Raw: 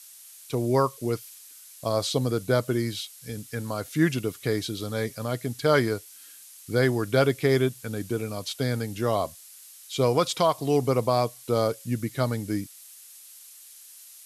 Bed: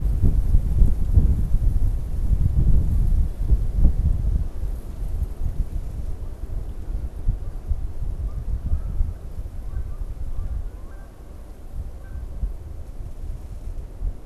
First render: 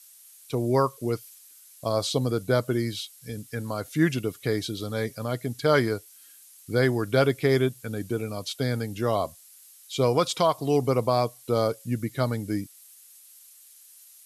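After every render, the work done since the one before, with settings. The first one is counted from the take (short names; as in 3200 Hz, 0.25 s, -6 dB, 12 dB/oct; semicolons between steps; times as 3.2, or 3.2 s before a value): denoiser 6 dB, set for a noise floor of -48 dBFS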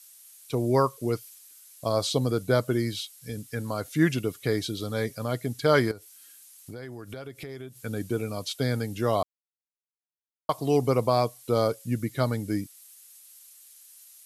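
5.91–7.79 compressor 8:1, threshold -36 dBFS; 9.23–10.49 mute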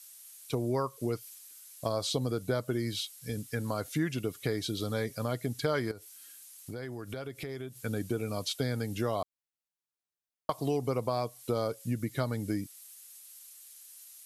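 compressor 4:1, threshold -28 dBFS, peak gain reduction 10.5 dB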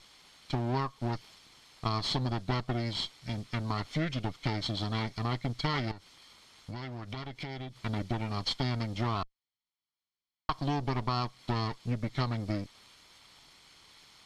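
minimum comb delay 0.92 ms; synth low-pass 4200 Hz, resonance Q 2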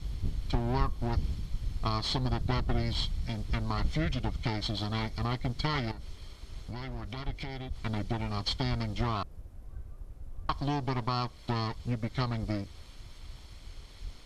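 add bed -14.5 dB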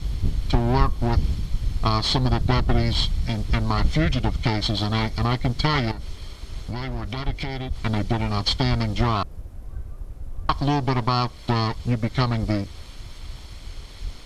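gain +9.5 dB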